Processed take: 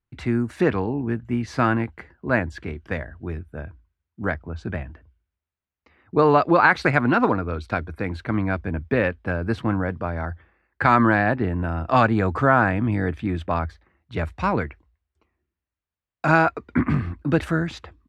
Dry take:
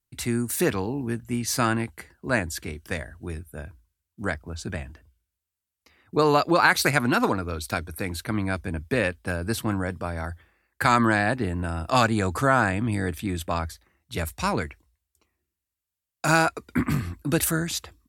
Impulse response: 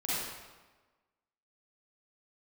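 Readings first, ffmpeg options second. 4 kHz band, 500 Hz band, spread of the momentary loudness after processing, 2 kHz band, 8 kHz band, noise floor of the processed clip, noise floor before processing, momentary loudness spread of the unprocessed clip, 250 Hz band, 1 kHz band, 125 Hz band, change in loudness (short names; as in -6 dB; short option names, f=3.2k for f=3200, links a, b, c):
-8.0 dB, +3.5 dB, 15 LU, +2.0 dB, under -15 dB, under -85 dBFS, under -85 dBFS, 14 LU, +3.5 dB, +3.0 dB, +3.5 dB, +2.5 dB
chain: -af "lowpass=2.1k,volume=3.5dB"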